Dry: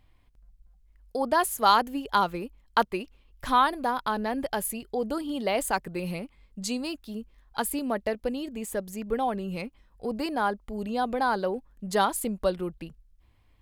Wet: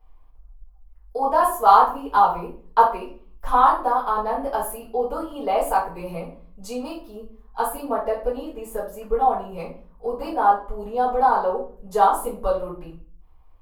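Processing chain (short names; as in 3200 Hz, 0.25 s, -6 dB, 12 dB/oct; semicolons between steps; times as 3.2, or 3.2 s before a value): graphic EQ 125/250/1000/2000/4000/8000 Hz -10/-10/+10/-10/-8/-7 dB; shoebox room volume 35 m³, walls mixed, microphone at 1.6 m; gain -5.5 dB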